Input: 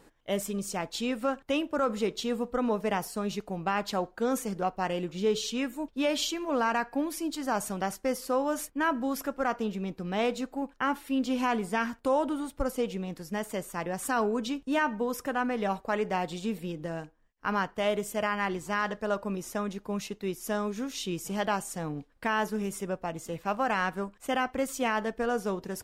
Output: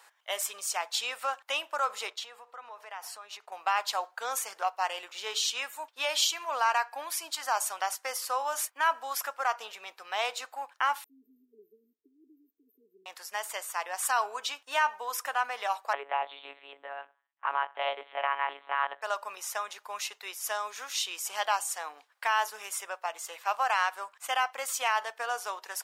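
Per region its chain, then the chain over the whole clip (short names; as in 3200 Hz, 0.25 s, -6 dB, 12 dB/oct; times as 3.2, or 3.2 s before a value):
2.1–3.52 expander -45 dBFS + high shelf 5200 Hz -9 dB + compressor 12:1, threshold -37 dBFS
11.04–13.06 brick-wall FIR band-stop 440–13000 Hz + air absorption 68 m
15.93–19.02 tilt -2.5 dB/oct + monotone LPC vocoder at 8 kHz 140 Hz
whole clip: HPF 820 Hz 24 dB/oct; dynamic EQ 1700 Hz, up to -5 dB, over -42 dBFS, Q 1.2; gain +6 dB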